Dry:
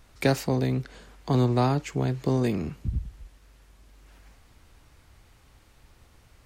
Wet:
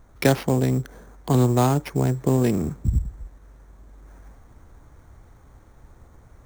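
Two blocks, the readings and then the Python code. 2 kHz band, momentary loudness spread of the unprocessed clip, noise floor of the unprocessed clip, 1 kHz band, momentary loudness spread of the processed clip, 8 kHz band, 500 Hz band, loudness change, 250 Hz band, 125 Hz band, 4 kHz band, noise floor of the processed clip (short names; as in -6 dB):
+3.0 dB, 12 LU, -58 dBFS, +3.5 dB, 9 LU, +8.5 dB, +4.0 dB, +4.5 dB, +4.5 dB, +4.5 dB, +2.0 dB, -52 dBFS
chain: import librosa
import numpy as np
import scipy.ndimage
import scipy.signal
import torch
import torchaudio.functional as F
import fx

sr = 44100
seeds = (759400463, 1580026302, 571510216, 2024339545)

p1 = fx.wiener(x, sr, points=15)
p2 = fx.rider(p1, sr, range_db=10, speed_s=0.5)
p3 = p1 + F.gain(torch.from_numpy(p2), -3.0).numpy()
y = fx.sample_hold(p3, sr, seeds[0], rate_hz=7700.0, jitter_pct=0)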